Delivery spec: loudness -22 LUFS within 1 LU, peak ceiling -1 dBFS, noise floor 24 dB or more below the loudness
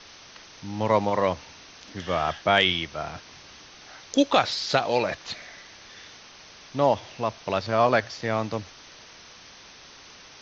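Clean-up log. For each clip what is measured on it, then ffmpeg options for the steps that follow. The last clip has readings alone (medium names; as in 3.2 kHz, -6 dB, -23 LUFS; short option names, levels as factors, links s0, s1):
noise floor -48 dBFS; noise floor target -49 dBFS; loudness -25.0 LUFS; peak level -7.0 dBFS; loudness target -22.0 LUFS
-> -af "afftdn=nr=6:nf=-48"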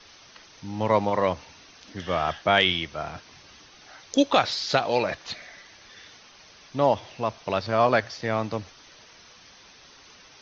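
noise floor -52 dBFS; loudness -25.0 LUFS; peak level -7.0 dBFS; loudness target -22.0 LUFS
-> -af "volume=1.41"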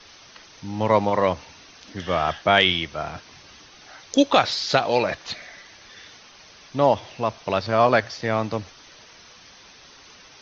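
loudness -22.0 LUFS; peak level -4.0 dBFS; noise floor -49 dBFS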